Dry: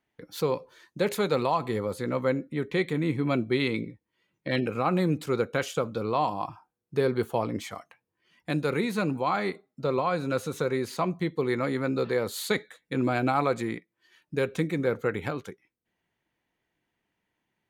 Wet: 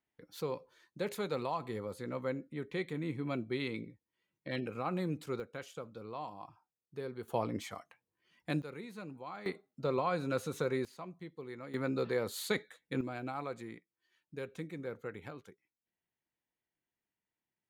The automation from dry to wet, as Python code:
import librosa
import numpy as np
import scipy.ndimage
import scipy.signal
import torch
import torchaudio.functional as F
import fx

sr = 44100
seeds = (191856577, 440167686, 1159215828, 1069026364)

y = fx.gain(x, sr, db=fx.steps((0.0, -10.5), (5.4, -16.5), (7.28, -6.0), (8.62, -18.5), (9.46, -6.0), (10.85, -18.5), (11.74, -6.5), (13.01, -15.0)))